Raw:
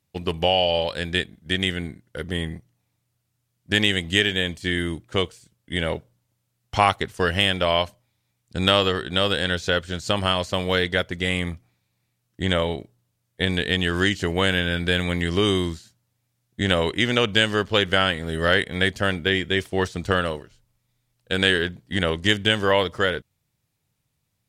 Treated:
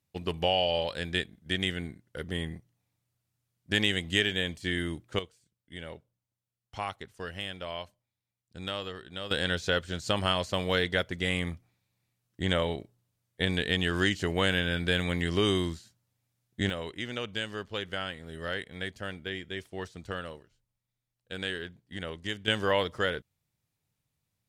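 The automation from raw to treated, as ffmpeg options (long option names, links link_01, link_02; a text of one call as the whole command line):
ffmpeg -i in.wav -af "asetnsamples=nb_out_samples=441:pad=0,asendcmd='5.19 volume volume -17dB;9.31 volume volume -5.5dB;16.7 volume volume -15dB;22.48 volume volume -7dB',volume=-6.5dB" out.wav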